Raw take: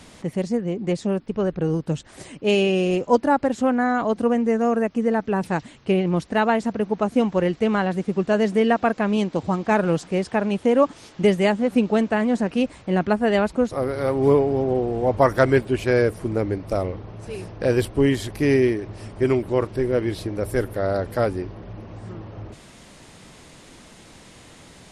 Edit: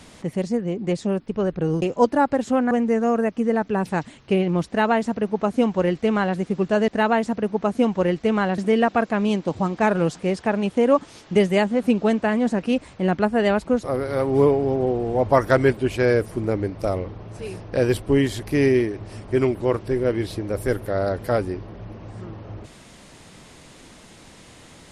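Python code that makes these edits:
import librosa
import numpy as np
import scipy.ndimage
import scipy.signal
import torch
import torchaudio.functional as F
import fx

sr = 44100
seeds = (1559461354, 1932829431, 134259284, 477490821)

y = fx.edit(x, sr, fx.cut(start_s=1.82, length_s=1.11),
    fx.cut(start_s=3.82, length_s=0.47),
    fx.duplicate(start_s=6.25, length_s=1.7, to_s=8.46), tone=tone)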